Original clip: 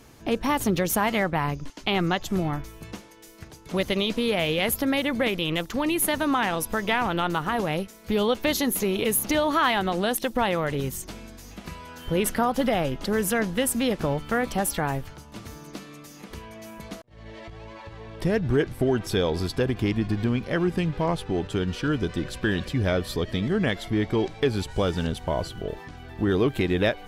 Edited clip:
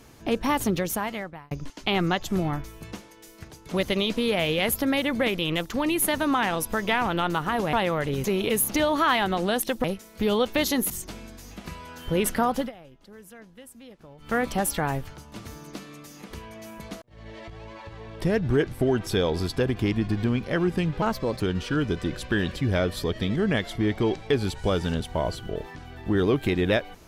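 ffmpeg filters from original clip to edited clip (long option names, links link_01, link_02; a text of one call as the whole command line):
ffmpeg -i in.wav -filter_complex "[0:a]asplit=10[link_01][link_02][link_03][link_04][link_05][link_06][link_07][link_08][link_09][link_10];[link_01]atrim=end=1.51,asetpts=PTS-STARTPTS,afade=type=out:start_time=0.58:duration=0.93[link_11];[link_02]atrim=start=1.51:end=7.732,asetpts=PTS-STARTPTS,afade=type=in:duration=0.004:curve=hsin[link_12];[link_03]atrim=start=10.388:end=10.902[link_13];[link_04]atrim=start=8.788:end=10.392[link_14];[link_05]atrim=start=7.728:end=8.792[link_15];[link_06]atrim=start=10.898:end=12.72,asetpts=PTS-STARTPTS,afade=type=out:start_time=1.652:duration=0.17:silence=0.0749894[link_16];[link_07]atrim=start=12.72:end=14.18,asetpts=PTS-STARTPTS,volume=-22.5dB[link_17];[link_08]atrim=start=14.18:end=21.024,asetpts=PTS-STARTPTS,afade=type=in:duration=0.17:silence=0.0749894[link_18];[link_09]atrim=start=21.02:end=21.53,asetpts=PTS-STARTPTS,asetrate=58212,aresample=44100[link_19];[link_10]atrim=start=21.526[link_20];[link_11][link_12]concat=n=2:v=0:a=1[link_21];[link_21][link_13]acrossfade=duration=0.004:curve1=hsin:curve2=hsin[link_22];[link_22][link_14]acrossfade=duration=0.004:curve1=hsin:curve2=hsin[link_23];[link_23][link_15]acrossfade=duration=0.004:curve1=hsin:curve2=hsin[link_24];[link_16][link_17][link_18]concat=n=3:v=0:a=1[link_25];[link_24][link_25]acrossfade=duration=0.004:curve1=hsin:curve2=hsin[link_26];[link_26][link_19]acrossfade=duration=0.004:curve1=hsin:curve2=hsin[link_27];[link_27][link_20]acrossfade=duration=0.004:curve1=hsin:curve2=hsin" out.wav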